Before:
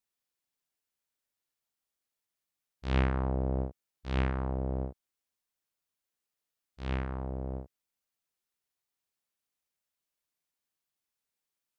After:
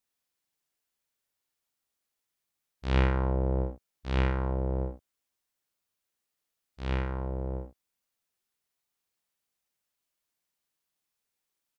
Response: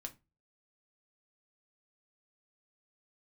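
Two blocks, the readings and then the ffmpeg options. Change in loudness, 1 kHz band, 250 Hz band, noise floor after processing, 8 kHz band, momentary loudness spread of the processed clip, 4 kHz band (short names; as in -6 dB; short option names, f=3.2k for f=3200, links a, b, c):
+3.0 dB, +3.0 dB, +1.5 dB, -85 dBFS, n/a, 13 LU, +3.5 dB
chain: -af "aecho=1:1:48|67:0.355|0.266,volume=2.5dB"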